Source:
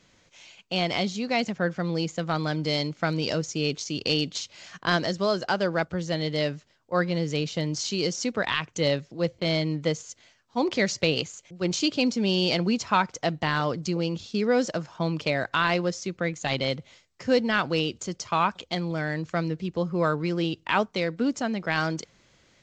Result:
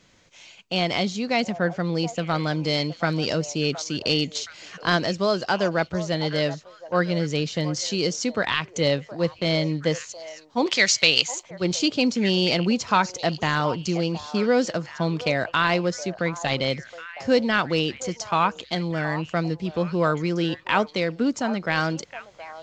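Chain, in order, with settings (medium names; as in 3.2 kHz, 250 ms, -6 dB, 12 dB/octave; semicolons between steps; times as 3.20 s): 10.66–11.43 s: tilt shelf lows -9.5 dB, about 910 Hz; repeats whose band climbs or falls 719 ms, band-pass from 750 Hz, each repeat 1.4 oct, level -10.5 dB; trim +2.5 dB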